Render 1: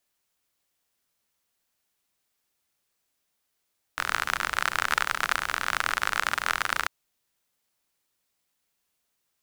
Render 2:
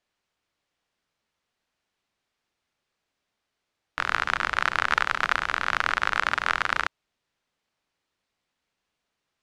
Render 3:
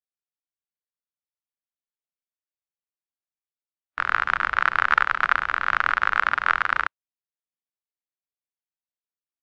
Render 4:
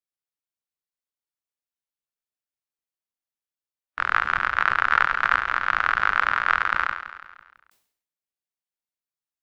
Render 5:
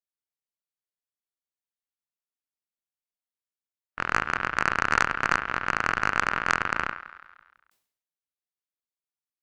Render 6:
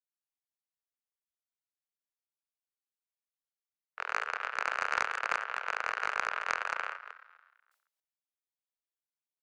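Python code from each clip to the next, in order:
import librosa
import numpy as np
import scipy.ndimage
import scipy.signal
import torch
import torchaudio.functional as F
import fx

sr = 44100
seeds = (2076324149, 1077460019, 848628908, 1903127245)

y1 = scipy.signal.sosfilt(scipy.signal.bessel(2, 3500.0, 'lowpass', norm='mag', fs=sr, output='sos'), x)
y1 = F.gain(torch.from_numpy(y1), 3.0).numpy()
y2 = fx.spectral_expand(y1, sr, expansion=1.5)
y2 = F.gain(torch.from_numpy(y2), 3.0).numpy()
y3 = fx.echo_feedback(y2, sr, ms=166, feedback_pct=49, wet_db=-12.0)
y3 = fx.sustainer(y3, sr, db_per_s=92.0)
y3 = F.gain(torch.from_numpy(y3), -1.5).numpy()
y4 = fx.cheby_harmonics(y3, sr, harmonics=(2, 3, 4), levels_db=(-13, -15, -17), full_scale_db=-1.0)
y5 = fx.reverse_delay(y4, sr, ms=127, wet_db=-8)
y5 = scipy.signal.sosfilt(scipy.signal.butter(12, 430.0, 'highpass', fs=sr, output='sos'), y5)
y5 = fx.doppler_dist(y5, sr, depth_ms=0.14)
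y5 = F.gain(torch.from_numpy(y5), -8.0).numpy()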